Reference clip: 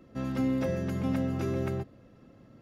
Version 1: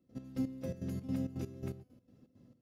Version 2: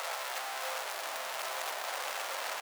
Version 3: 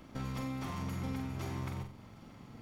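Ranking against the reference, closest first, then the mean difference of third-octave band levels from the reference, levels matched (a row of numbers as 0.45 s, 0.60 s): 1, 3, 2; 6.0 dB, 8.0 dB, 24.0 dB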